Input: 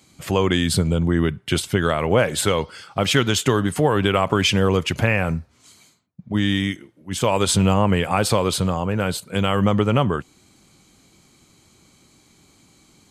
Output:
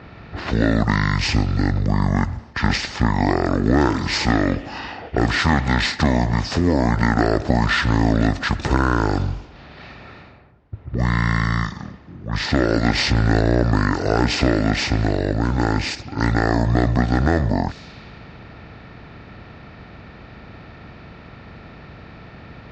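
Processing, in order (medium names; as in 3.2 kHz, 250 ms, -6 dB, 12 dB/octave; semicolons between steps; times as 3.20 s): spectral levelling over time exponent 0.6; level-controlled noise filter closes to 2.9 kHz, open at -15.5 dBFS; speed mistake 78 rpm record played at 45 rpm; trim -2.5 dB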